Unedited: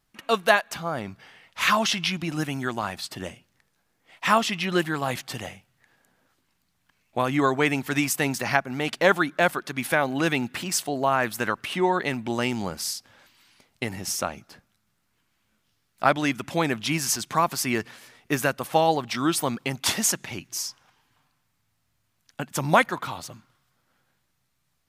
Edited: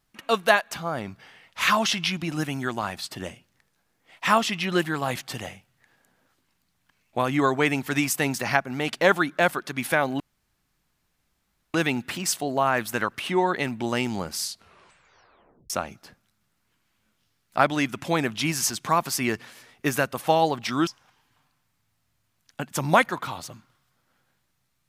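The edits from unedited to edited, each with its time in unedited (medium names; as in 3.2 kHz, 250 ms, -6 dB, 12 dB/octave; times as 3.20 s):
10.20 s: insert room tone 1.54 s
12.86 s: tape stop 1.30 s
19.33–20.67 s: delete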